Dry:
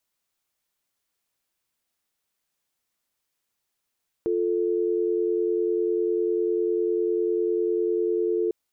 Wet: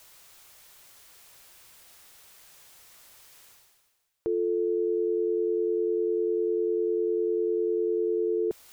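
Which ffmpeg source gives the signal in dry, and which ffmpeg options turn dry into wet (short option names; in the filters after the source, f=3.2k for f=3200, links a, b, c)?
-f lavfi -i "aevalsrc='0.0631*(sin(2*PI*350*t)+sin(2*PI*440*t))':d=4.25:s=44100"
-af "equalizer=f=240:w=1.7:g=-8.5,areverse,acompressor=mode=upward:threshold=-32dB:ratio=2.5,areverse"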